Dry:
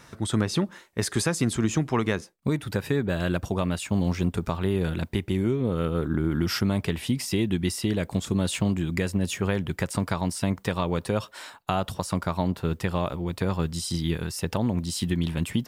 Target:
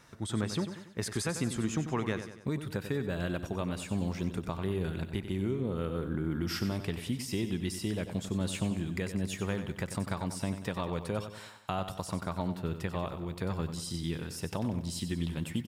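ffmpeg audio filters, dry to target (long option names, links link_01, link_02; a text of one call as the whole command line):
ffmpeg -i in.wav -af "aecho=1:1:94|188|282|376|470:0.316|0.152|0.0729|0.035|0.0168,volume=-8dB" out.wav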